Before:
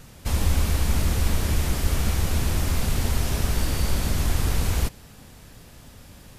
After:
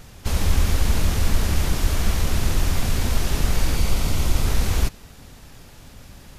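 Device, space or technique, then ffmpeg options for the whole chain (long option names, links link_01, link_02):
octave pedal: -filter_complex "[0:a]asplit=2[link_01][link_02];[link_02]asetrate=22050,aresample=44100,atempo=2,volume=-1dB[link_03];[link_01][link_03]amix=inputs=2:normalize=0,asettb=1/sr,asplit=3[link_04][link_05][link_06];[link_04]atrim=end=3.754[link_07];[link_05]atrim=start=3.75:end=4.46,asetpts=PTS-STARTPTS,afade=type=in:duration=0.004:curve=qsin,afade=type=out:start_time=0.706:duration=0.004:curve=qsin,bandreject=frequency=1700:width=6.9[link_08];[link_06]atrim=start=4.456[link_09];[link_07][link_08]acrossfade=duration=0.004:curve1=hsin:curve2=qsin[link_10];[link_10][link_09]acrossfade=duration=0.004:curve1=qsin:curve2=hsin"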